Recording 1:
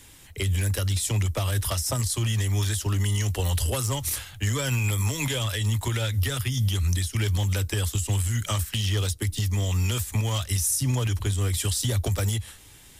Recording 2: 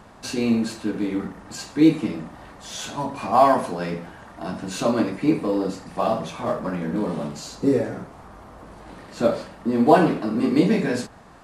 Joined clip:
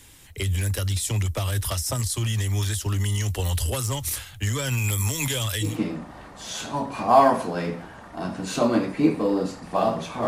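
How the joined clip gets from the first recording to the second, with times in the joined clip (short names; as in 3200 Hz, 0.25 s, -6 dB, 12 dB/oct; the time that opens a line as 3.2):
recording 1
4.77–5.79 high shelf 6900 Hz +7.5 dB
5.7 switch to recording 2 from 1.94 s, crossfade 0.18 s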